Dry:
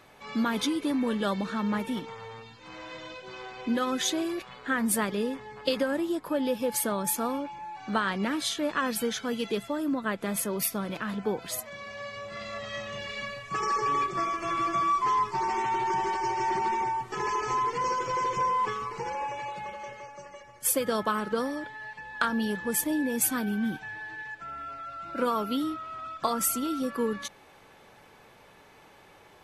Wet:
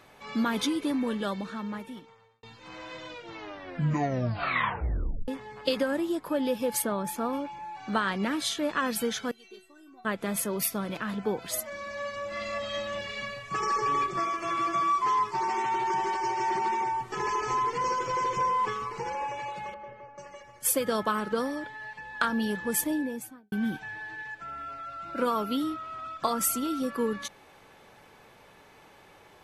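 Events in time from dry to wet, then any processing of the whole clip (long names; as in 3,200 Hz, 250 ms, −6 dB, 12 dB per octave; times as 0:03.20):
0:00.80–0:02.43: fade out
0:03.07: tape stop 2.21 s
0:06.82–0:07.33: high-shelf EQ 4,100 Hz −11.5 dB
0:09.31–0:10.05: stiff-string resonator 370 Hz, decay 0.28 s, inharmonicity 0.002
0:11.53–0:13.01: comb filter 3.4 ms, depth 87%
0:14.19–0:16.92: low-shelf EQ 110 Hz −10 dB
0:19.74–0:20.18: head-to-tape spacing loss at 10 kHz 40 dB
0:22.80–0:23.52: fade out and dull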